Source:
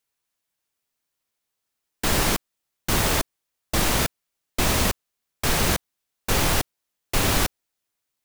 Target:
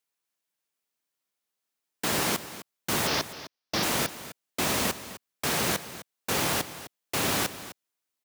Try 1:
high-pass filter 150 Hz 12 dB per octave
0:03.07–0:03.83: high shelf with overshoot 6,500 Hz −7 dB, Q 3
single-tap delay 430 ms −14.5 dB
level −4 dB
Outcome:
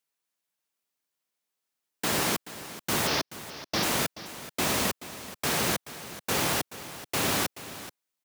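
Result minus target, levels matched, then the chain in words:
echo 174 ms late
high-pass filter 150 Hz 12 dB per octave
0:03.07–0:03.83: high shelf with overshoot 6,500 Hz −7 dB, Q 3
single-tap delay 256 ms −14.5 dB
level −4 dB

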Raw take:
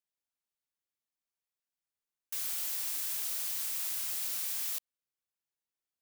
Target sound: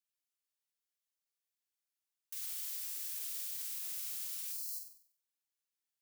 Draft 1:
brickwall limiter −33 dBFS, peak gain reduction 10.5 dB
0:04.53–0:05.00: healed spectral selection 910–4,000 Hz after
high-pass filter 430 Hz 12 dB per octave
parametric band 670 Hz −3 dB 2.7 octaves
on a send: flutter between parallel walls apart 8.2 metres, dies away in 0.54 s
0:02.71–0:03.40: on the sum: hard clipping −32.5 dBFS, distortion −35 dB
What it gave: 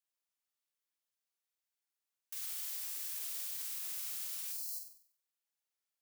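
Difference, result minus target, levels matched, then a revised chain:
500 Hz band +5.5 dB
brickwall limiter −33 dBFS, peak gain reduction 10.5 dB
0:04.53–0:05.00: healed spectral selection 910–4,000 Hz after
high-pass filter 430 Hz 12 dB per octave
parametric band 670 Hz −9.5 dB 2.7 octaves
on a send: flutter between parallel walls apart 8.2 metres, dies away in 0.54 s
0:02.71–0:03.40: on the sum: hard clipping −32.5 dBFS, distortion −36 dB

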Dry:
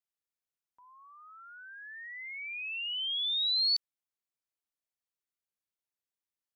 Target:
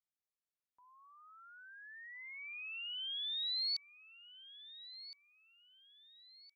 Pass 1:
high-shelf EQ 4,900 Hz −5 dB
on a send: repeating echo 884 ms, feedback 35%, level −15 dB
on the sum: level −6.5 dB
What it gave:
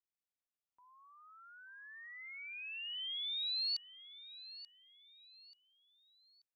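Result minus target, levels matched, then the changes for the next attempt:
echo 481 ms early
change: repeating echo 1,365 ms, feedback 35%, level −15 dB

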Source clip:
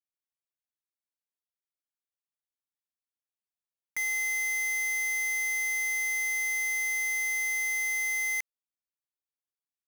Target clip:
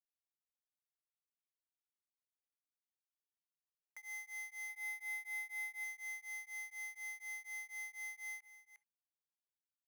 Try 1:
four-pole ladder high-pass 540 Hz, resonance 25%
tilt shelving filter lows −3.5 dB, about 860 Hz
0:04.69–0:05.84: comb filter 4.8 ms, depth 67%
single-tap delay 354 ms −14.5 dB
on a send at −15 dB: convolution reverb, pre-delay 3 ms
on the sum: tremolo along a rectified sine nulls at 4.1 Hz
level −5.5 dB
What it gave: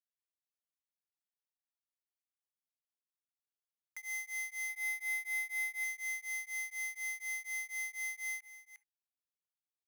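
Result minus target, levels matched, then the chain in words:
1,000 Hz band −6.5 dB
four-pole ladder high-pass 540 Hz, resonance 25%
tilt shelving filter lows +5.5 dB, about 860 Hz
0:04.69–0:05.84: comb filter 4.8 ms, depth 67%
single-tap delay 354 ms −14.5 dB
on a send at −15 dB: convolution reverb, pre-delay 3 ms
on the sum: tremolo along a rectified sine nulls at 4.1 Hz
level −5.5 dB

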